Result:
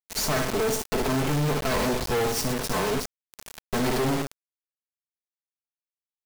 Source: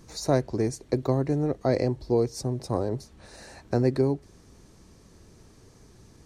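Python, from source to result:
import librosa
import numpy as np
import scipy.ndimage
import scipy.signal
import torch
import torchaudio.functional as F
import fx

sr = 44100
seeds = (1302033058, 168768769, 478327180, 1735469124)

y = fx.lower_of_two(x, sr, delay_ms=4.6)
y = fx.room_flutter(y, sr, wall_m=10.5, rt60_s=0.46)
y = fx.quant_companded(y, sr, bits=2)
y = y * 10.0 ** (2.0 / 20.0)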